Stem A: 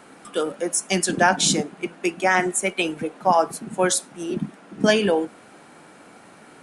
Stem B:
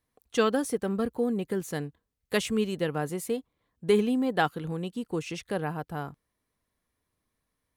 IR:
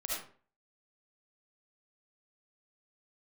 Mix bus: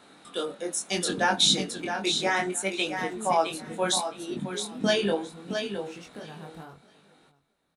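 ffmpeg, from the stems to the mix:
-filter_complex "[0:a]equalizer=f=3.8k:t=o:w=0.28:g=15,volume=-4dB,asplit=3[a][b][c];[b]volume=-7.5dB[d];[1:a]acompressor=threshold=-34dB:ratio=3,adelay=650,volume=-3dB,asplit=2[e][f];[f]volume=-24dB[g];[c]apad=whole_len=371006[h];[e][h]sidechaincompress=threshold=-41dB:ratio=8:attack=5.9:release=115[i];[d][g]amix=inputs=2:normalize=0,aecho=0:1:666|1332|1998:1|0.17|0.0289[j];[a][i][j]amix=inputs=3:normalize=0,flanger=delay=20:depth=5:speed=0.7"

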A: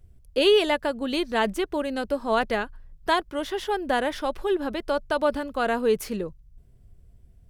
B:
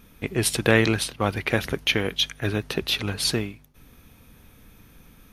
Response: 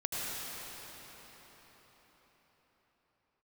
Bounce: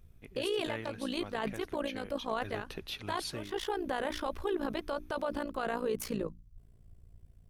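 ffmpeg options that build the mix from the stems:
-filter_complex "[0:a]equalizer=f=1.1k:w=5:g=4,bandreject=f=60:t=h:w=6,bandreject=f=120:t=h:w=6,bandreject=f=180:t=h:w=6,bandreject=f=240:t=h:w=6,bandreject=f=300:t=h:w=6,tremolo=f=57:d=0.824,volume=-0.5dB[a];[1:a]volume=-16dB,afade=t=in:st=2.3:d=0.36:silence=0.473151,asplit=2[b][c];[c]apad=whole_len=330667[d];[a][d]sidechaincompress=threshold=-50dB:ratio=8:attack=46:release=188[e];[e][b]amix=inputs=2:normalize=0,alimiter=limit=-24dB:level=0:latency=1:release=14"

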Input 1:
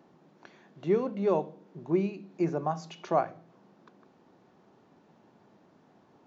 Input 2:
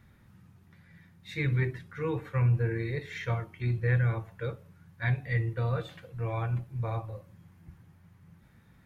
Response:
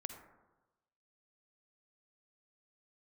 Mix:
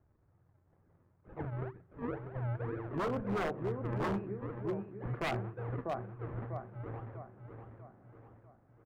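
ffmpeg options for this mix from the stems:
-filter_complex "[0:a]equalizer=f=900:t=o:w=0.21:g=-6,adelay=2100,volume=-3dB,asplit=3[a][b][c];[a]atrim=end=4.38,asetpts=PTS-STARTPTS,afade=t=out:st=4.376:d=0.004:c=hsin[d];[b]atrim=start=4.38:end=5.08,asetpts=PTS-STARTPTS,volume=0[e];[c]atrim=start=5.08,asetpts=PTS-STARTPTS,afade=t=in:d=0.004:c=hsin[f];[d][e][f]concat=n=3:v=0:a=1,asplit=2[g][h];[h]volume=-7.5dB[i];[1:a]lowshelf=f=64:g=-9,aecho=1:1:2.4:0.88,acrusher=samples=42:mix=1:aa=0.000001:lfo=1:lforange=42:lforate=2.1,volume=-11dB,asplit=2[j][k];[k]volume=-7.5dB[l];[i][l]amix=inputs=2:normalize=0,aecho=0:1:645|1290|1935|2580|3225|3870:1|0.45|0.202|0.0911|0.041|0.0185[m];[g][j][m]amix=inputs=3:normalize=0,lowpass=f=1.7k:w=0.5412,lowpass=f=1.7k:w=1.3066,aeval=exprs='0.0398*(abs(mod(val(0)/0.0398+3,4)-2)-1)':c=same"

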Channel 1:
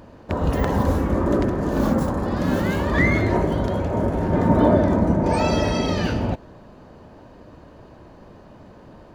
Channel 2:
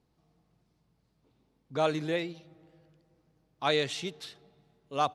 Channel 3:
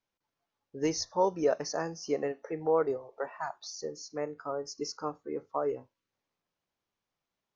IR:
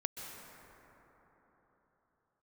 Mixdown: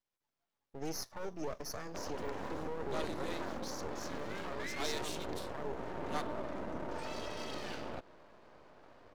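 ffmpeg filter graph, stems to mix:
-filter_complex "[0:a]acrossover=split=320 7100:gain=0.141 1 0.2[a][b][c];[a][b][c]amix=inputs=3:normalize=0,acompressor=threshold=-29dB:ratio=2,adelay=1650,volume=-6dB[d];[1:a]aemphasis=mode=production:type=50fm,acontrast=84,adelay=1150,volume=-14.5dB[e];[2:a]volume=-0.5dB[f];[d][f]amix=inputs=2:normalize=0,acrossover=split=450|3000[g][h][i];[h]acompressor=threshold=-41dB:ratio=2[j];[g][j][i]amix=inputs=3:normalize=0,alimiter=level_in=4dB:limit=-24dB:level=0:latency=1:release=11,volume=-4dB,volume=0dB[k];[e][k]amix=inputs=2:normalize=0,aeval=exprs='max(val(0),0)':c=same"

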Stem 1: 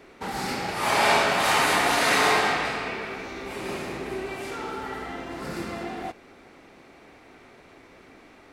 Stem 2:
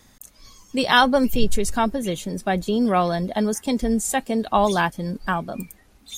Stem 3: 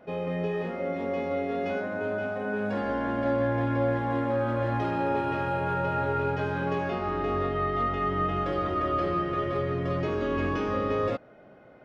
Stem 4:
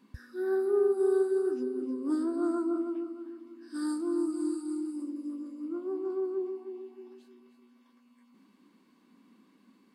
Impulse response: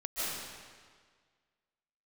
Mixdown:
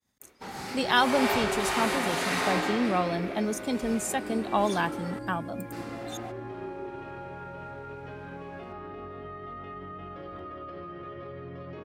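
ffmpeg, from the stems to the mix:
-filter_complex "[0:a]adelay=200,volume=-8dB,asplit=3[a][b][c];[a]atrim=end=5.19,asetpts=PTS-STARTPTS,afade=t=out:st=5.186:d=0.004:c=hsin[d];[b]atrim=start=5.19:end=5.72,asetpts=PTS-STARTPTS,volume=0[e];[c]atrim=start=5.72,asetpts=PTS-STARTPTS,afade=t=in:d=0.004:c=hsin[f];[d][e][f]concat=n=3:v=0:a=1[g];[1:a]volume=-7dB[h];[2:a]lowpass=4.7k,alimiter=limit=-23.5dB:level=0:latency=1:release=80,acompressor=threshold=-33dB:ratio=6,adelay=1700,volume=-4.5dB[i];[3:a]aeval=exprs='val(0)+0.00562*(sin(2*PI*50*n/s)+sin(2*PI*2*50*n/s)/2+sin(2*PI*3*50*n/s)/3+sin(2*PI*4*50*n/s)/4+sin(2*PI*5*50*n/s)/5)':c=same,adelay=450,volume=-8.5dB[j];[g][h][i][j]amix=inputs=4:normalize=0,agate=range=-33dB:threshold=-50dB:ratio=3:detection=peak,highpass=66"

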